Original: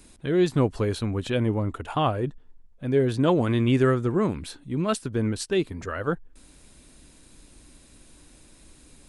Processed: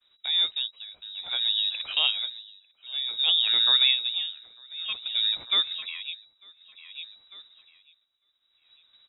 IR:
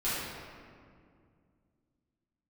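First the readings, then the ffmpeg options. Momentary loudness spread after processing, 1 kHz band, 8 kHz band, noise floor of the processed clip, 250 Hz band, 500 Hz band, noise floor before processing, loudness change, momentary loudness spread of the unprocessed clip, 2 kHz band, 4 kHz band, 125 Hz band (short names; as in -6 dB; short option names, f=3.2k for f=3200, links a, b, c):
21 LU, -13.5 dB, under -40 dB, -71 dBFS, under -35 dB, under -25 dB, -54 dBFS, +1.5 dB, 9 LU, 0.0 dB, +18.5 dB, under -40 dB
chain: -af "agate=range=-33dB:threshold=-43dB:ratio=3:detection=peak,aecho=1:1:898|1796|2694:0.237|0.064|0.0173,lowpass=f=3.3k:t=q:w=0.5098,lowpass=f=3.3k:t=q:w=0.6013,lowpass=f=3.3k:t=q:w=0.9,lowpass=f=3.3k:t=q:w=2.563,afreqshift=-3900,tremolo=f=0.55:d=0.88"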